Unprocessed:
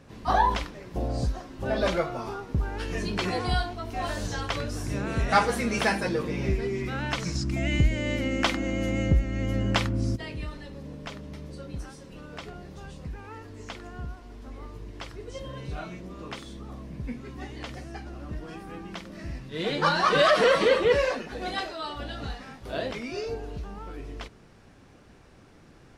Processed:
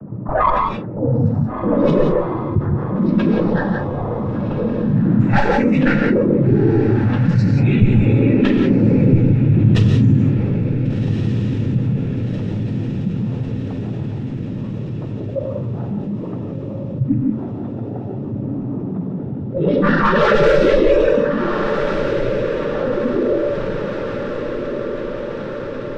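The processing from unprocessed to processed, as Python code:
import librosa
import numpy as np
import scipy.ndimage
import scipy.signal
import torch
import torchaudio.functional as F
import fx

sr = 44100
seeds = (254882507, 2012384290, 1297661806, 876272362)

y = fx.noise_vocoder(x, sr, seeds[0], bands=12)
y = fx.clip_asym(y, sr, top_db=-28.0, bottom_db=-16.5)
y = fx.tilt_eq(y, sr, slope=-3.5)
y = fx.noise_reduce_blind(y, sr, reduce_db=14)
y = fx.peak_eq(y, sr, hz=1200.0, db=6.5, octaves=1.2)
y = fx.env_lowpass(y, sr, base_hz=510.0, full_db=-15.0)
y = fx.echo_diffused(y, sr, ms=1482, feedback_pct=47, wet_db=-12.5)
y = fx.rev_gated(y, sr, seeds[1], gate_ms=200, shape='rising', drr_db=3.5)
y = fx.env_flatten(y, sr, amount_pct=50)
y = y * 10.0 ** (3.0 / 20.0)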